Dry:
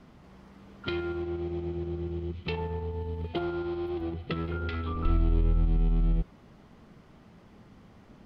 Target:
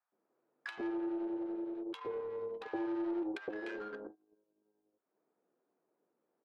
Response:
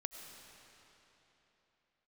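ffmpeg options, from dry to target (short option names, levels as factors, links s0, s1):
-filter_complex "[0:a]acompressor=threshold=0.0112:ratio=4,afreqshift=-83,asoftclip=type=tanh:threshold=0.0188,highpass=f=260:w=0.5412,highpass=f=260:w=1.3066,agate=range=0.0501:threshold=0.00282:ratio=16:detection=peak,adynamicsmooth=sensitivity=7.5:basefreq=760,highshelf=f=3800:g=-7.5,acrossover=split=730[s0][s1];[s0]adelay=150[s2];[s2][s1]amix=inputs=2:normalize=0,asetrate=56448,aresample=44100,volume=2.99"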